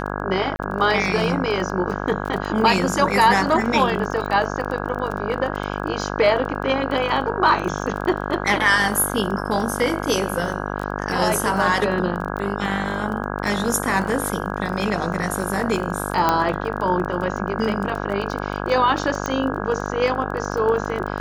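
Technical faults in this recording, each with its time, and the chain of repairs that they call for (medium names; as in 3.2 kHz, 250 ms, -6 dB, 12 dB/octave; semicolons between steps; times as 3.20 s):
buzz 50 Hz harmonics 33 -27 dBFS
crackle 20 per s -27 dBFS
0.56–0.59 s: dropout 30 ms
16.29 s: pop -4 dBFS
19.26 s: pop -11 dBFS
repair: de-click; de-hum 50 Hz, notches 33; interpolate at 0.56 s, 30 ms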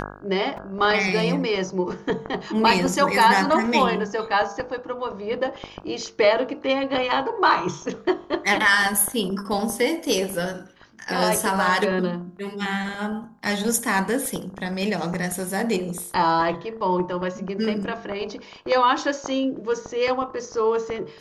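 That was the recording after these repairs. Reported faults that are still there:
nothing left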